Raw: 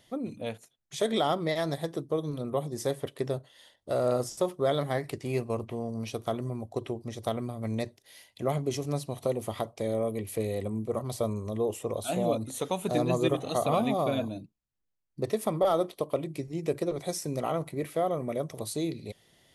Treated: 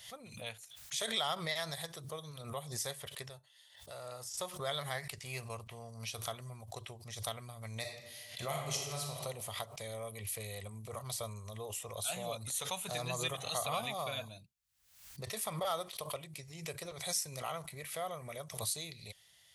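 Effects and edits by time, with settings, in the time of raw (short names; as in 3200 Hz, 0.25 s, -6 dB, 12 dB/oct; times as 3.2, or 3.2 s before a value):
3.29–4.34 resonator 880 Hz, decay 0.18 s
7.8–9.15 reverb throw, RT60 1.3 s, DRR -0.5 dB
whole clip: HPF 59 Hz; passive tone stack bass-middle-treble 10-0-10; backwards sustainer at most 78 dB/s; gain +2.5 dB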